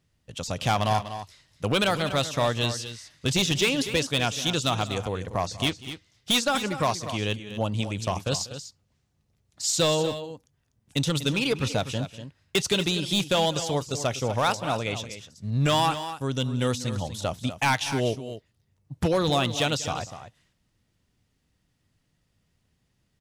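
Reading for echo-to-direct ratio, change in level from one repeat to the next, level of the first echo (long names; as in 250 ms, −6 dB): −11.0 dB, repeats not evenly spaced, −19.0 dB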